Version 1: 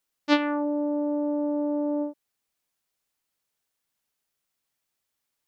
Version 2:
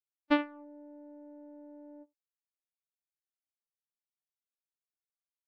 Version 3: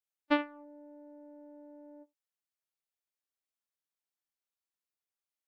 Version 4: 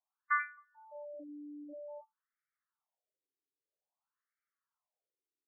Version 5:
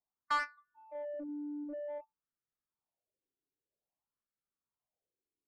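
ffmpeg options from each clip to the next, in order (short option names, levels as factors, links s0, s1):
-filter_complex "[0:a]acrossover=split=3300[s0][s1];[s1]acompressor=threshold=0.00316:ratio=4:attack=1:release=60[s2];[s0][s2]amix=inputs=2:normalize=0,agate=range=0.0112:threshold=0.0708:ratio=16:detection=peak,volume=0.596"
-af "bass=f=250:g=-7,treble=f=4000:g=-1"
-filter_complex "[0:a]asplit=2[s0][s1];[s1]highpass=f=720:p=1,volume=4.47,asoftclip=type=tanh:threshold=0.266[s2];[s0][s2]amix=inputs=2:normalize=0,lowpass=f=1100:p=1,volume=0.501,afftfilt=real='re*between(b*sr/1024,320*pow(1700/320,0.5+0.5*sin(2*PI*0.51*pts/sr))/1.41,320*pow(1700/320,0.5+0.5*sin(2*PI*0.51*pts/sr))*1.41)':imag='im*between(b*sr/1024,320*pow(1700/320,0.5+0.5*sin(2*PI*0.51*pts/sr))/1.41,320*pow(1700/320,0.5+0.5*sin(2*PI*0.51*pts/sr))*1.41)':win_size=1024:overlap=0.75,volume=2.11"
-af "volume=44.7,asoftclip=hard,volume=0.0224,adynamicsmooth=sensitivity=4.5:basefreq=570,volume=2.37"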